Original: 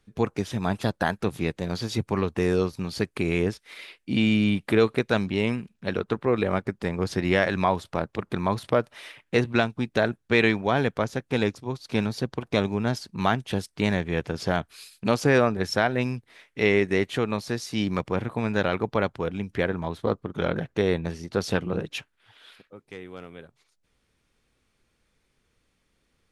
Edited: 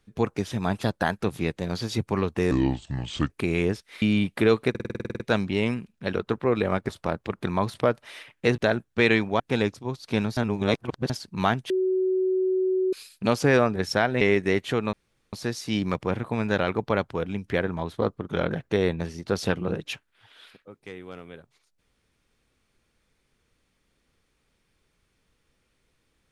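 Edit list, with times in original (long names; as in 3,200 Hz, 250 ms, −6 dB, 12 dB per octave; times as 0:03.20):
0:02.51–0:03.07: play speed 71%
0:03.79–0:04.33: remove
0:05.01: stutter 0.05 s, 11 plays
0:06.70–0:07.78: remove
0:09.47–0:09.91: remove
0:10.73–0:11.21: remove
0:12.18–0:12.91: reverse
0:13.51–0:14.74: beep over 374 Hz −20.5 dBFS
0:16.02–0:16.66: remove
0:17.38: splice in room tone 0.40 s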